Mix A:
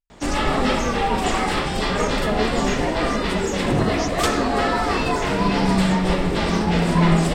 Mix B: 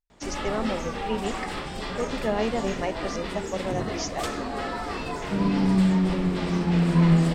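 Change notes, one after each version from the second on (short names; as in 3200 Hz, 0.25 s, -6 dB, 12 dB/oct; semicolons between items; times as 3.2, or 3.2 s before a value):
first sound -10.5 dB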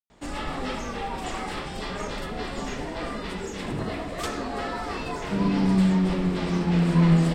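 speech: muted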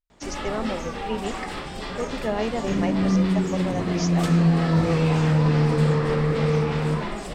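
speech: unmuted; second sound: entry -2.65 s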